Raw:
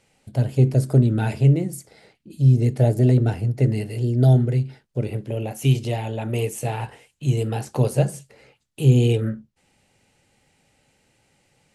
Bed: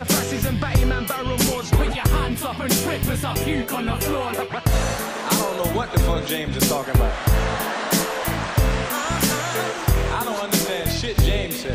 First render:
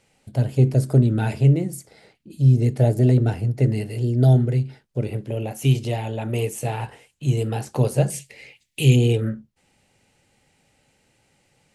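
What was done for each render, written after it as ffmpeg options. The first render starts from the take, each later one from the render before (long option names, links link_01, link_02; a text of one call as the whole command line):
ffmpeg -i in.wav -filter_complex "[0:a]asettb=1/sr,asplit=3[link_01][link_02][link_03];[link_01]atrim=end=8.104[link_04];[link_02]atrim=start=8.1:end=8.96,asetpts=PTS-STARTPTS,afade=type=in:duration=0.004:curve=qsin,afade=type=out:start_time=0.856:duration=0.004:curve=qsin,highshelf=frequency=1700:width_type=q:width=3:gain=7.5[link_05];[link_03]atrim=start=8.956[link_06];[link_04][link_05]acrossfade=duration=0.004:curve1=hsin:curve2=qsin[link_07];[link_07][link_06]acrossfade=duration=0.004:curve1=qsin:curve2=hsin" out.wav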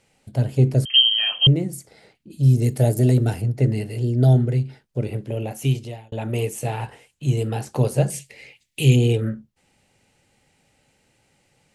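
ffmpeg -i in.wav -filter_complex "[0:a]asettb=1/sr,asplit=3[link_01][link_02][link_03];[link_01]atrim=end=0.854[link_04];[link_02]atrim=start=0.85:end=1.47,asetpts=PTS-STARTPTS,afade=type=in:duration=0.004:curve=qsin,afade=type=out:start_time=0.616:duration=0.004:curve=qsin,lowpass=frequency=2800:width_type=q:width=0.5098,lowpass=frequency=2800:width_type=q:width=0.6013,lowpass=frequency=2800:width_type=q:width=0.9,lowpass=frequency=2800:width_type=q:width=2.563,afreqshift=-3300[link_05];[link_03]atrim=start=1.466[link_06];[link_04][link_05]acrossfade=duration=0.004:curve1=hsin:curve2=qsin[link_07];[link_07][link_06]acrossfade=duration=0.004:curve1=qsin:curve2=hsin,asettb=1/sr,asplit=3[link_08][link_09][link_10];[link_08]atrim=end=2.434[link_11];[link_09]atrim=start=2.43:end=3.42,asetpts=PTS-STARTPTS,afade=type=in:duration=0.004:curve=qsin,afade=type=out:start_time=0.986:duration=0.004:curve=qsin,aemphasis=mode=production:type=50fm[link_12];[link_10]atrim=start=3.416[link_13];[link_11][link_12]acrossfade=duration=0.004:curve1=hsin:curve2=qsin[link_14];[link_14][link_13]acrossfade=duration=0.004:curve1=qsin:curve2=hsin,asplit=2[link_15][link_16];[link_15]atrim=end=6.12,asetpts=PTS-STARTPTS,afade=type=out:start_time=5.55:duration=0.57[link_17];[link_16]atrim=start=6.12,asetpts=PTS-STARTPTS,afade=type=in:duration=0.004:curve=hsin[link_18];[link_17][link_18]concat=n=2:v=0:a=1" out.wav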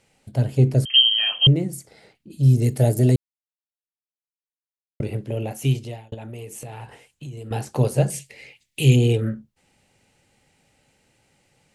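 ffmpeg -i in.wav -filter_complex "[0:a]asettb=1/sr,asplit=3[link_01][link_02][link_03];[link_01]atrim=end=6.144[link_04];[link_02]atrim=start=6.14:end=7.51,asetpts=PTS-STARTPTS,afade=type=in:duration=0.004:curve=qsin,afade=type=out:start_time=1.366:duration=0.004:curve=qsin,acompressor=threshold=-33dB:ratio=6:attack=3.2:release=140:knee=1:detection=peak[link_05];[link_03]atrim=start=7.506[link_06];[link_04][link_05]acrossfade=duration=0.004:curve1=hsin:curve2=qsin[link_07];[link_07][link_06]acrossfade=duration=0.004:curve1=qsin:curve2=hsin,asplit=3[link_08][link_09][link_10];[link_08]atrim=end=3.16,asetpts=PTS-STARTPTS,afade=type=out:start_time=3.156:duration=0.004:curve=hsin[link_11];[link_09]atrim=start=3.16:end=5,asetpts=PTS-STARTPTS,volume=0[link_12];[link_10]atrim=start=5,asetpts=PTS-STARTPTS,afade=type=in:duration=0.004:curve=hsin[link_13];[link_11][link_12][link_13]concat=n=3:v=0:a=1" out.wav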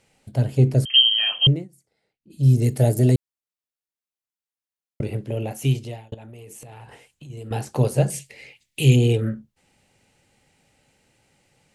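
ffmpeg -i in.wav -filter_complex "[0:a]asettb=1/sr,asplit=3[link_01][link_02][link_03];[link_01]atrim=end=6.144[link_04];[link_02]atrim=start=6.14:end=7.3,asetpts=PTS-STARTPTS,afade=type=in:duration=0.004:curve=qsin,afade=type=out:start_time=1.156:duration=0.004:curve=qsin,acompressor=threshold=-38dB:ratio=6:attack=3.2:release=140:knee=1:detection=peak[link_05];[link_03]atrim=start=7.296[link_06];[link_04][link_05]acrossfade=duration=0.004:curve1=hsin:curve2=qsin[link_07];[link_07][link_06]acrossfade=duration=0.004:curve1=qsin:curve2=hsin,asplit=3[link_08][link_09][link_10];[link_08]atrim=end=1.68,asetpts=PTS-STARTPTS,afade=type=out:start_time=1.34:duration=0.34:curve=qsin:silence=0.0794328[link_11];[link_09]atrim=start=1.68:end=2.21,asetpts=PTS-STARTPTS,volume=-22dB[link_12];[link_10]atrim=start=2.21,asetpts=PTS-STARTPTS,afade=type=in:duration=0.34:curve=qsin:silence=0.0794328[link_13];[link_11][link_12][link_13]concat=n=3:v=0:a=1" out.wav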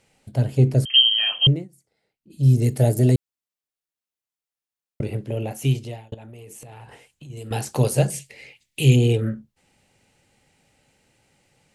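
ffmpeg -i in.wav -filter_complex "[0:a]asettb=1/sr,asplit=3[link_01][link_02][link_03];[link_01]atrim=end=7.364[link_04];[link_02]atrim=start=7.36:end=8.07,asetpts=PTS-STARTPTS,afade=type=in:duration=0.004:curve=qsin,afade=type=out:start_time=0.706:duration=0.004:curve=qsin,highshelf=frequency=2400:gain=8[link_05];[link_03]atrim=start=8.066[link_06];[link_04][link_05]acrossfade=duration=0.004:curve1=hsin:curve2=qsin[link_07];[link_07][link_06]acrossfade=duration=0.004:curve1=qsin:curve2=hsin" out.wav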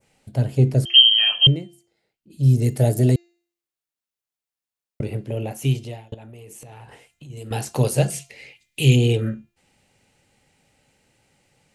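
ffmpeg -i in.wav -af "bandreject=frequency=345.4:width_type=h:width=4,bandreject=frequency=690.8:width_type=h:width=4,bandreject=frequency=1036.2:width_type=h:width=4,bandreject=frequency=1381.6:width_type=h:width=4,bandreject=frequency=1727:width_type=h:width=4,bandreject=frequency=2072.4:width_type=h:width=4,bandreject=frequency=2417.8:width_type=h:width=4,bandreject=frequency=2763.2:width_type=h:width=4,bandreject=frequency=3108.6:width_type=h:width=4,bandreject=frequency=3454:width_type=h:width=4,bandreject=frequency=3799.4:width_type=h:width=4,bandreject=frequency=4144.8:width_type=h:width=4,bandreject=frequency=4490.2:width_type=h:width=4,bandreject=frequency=4835.6:width_type=h:width=4,bandreject=frequency=5181:width_type=h:width=4,bandreject=frequency=5526.4:width_type=h:width=4,bandreject=frequency=5871.8:width_type=h:width=4,bandreject=frequency=6217.2:width_type=h:width=4,bandreject=frequency=6562.6:width_type=h:width=4,bandreject=frequency=6908:width_type=h:width=4,bandreject=frequency=7253.4:width_type=h:width=4,adynamicequalizer=threshold=0.0224:dfrequency=3500:dqfactor=0.8:tfrequency=3500:tqfactor=0.8:attack=5:release=100:ratio=0.375:range=2:mode=boostabove:tftype=bell" out.wav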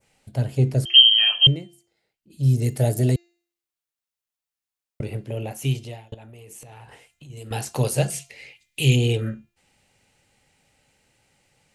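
ffmpeg -i in.wav -af "equalizer=frequency=250:width_type=o:width=2.7:gain=-4" out.wav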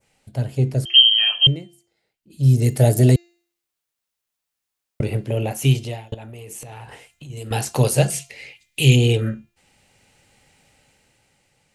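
ffmpeg -i in.wav -af "dynaudnorm=framelen=160:gausssize=13:maxgain=7.5dB" out.wav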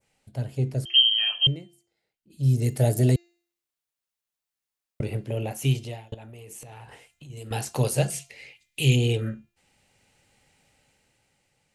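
ffmpeg -i in.wav -af "volume=-6.5dB" out.wav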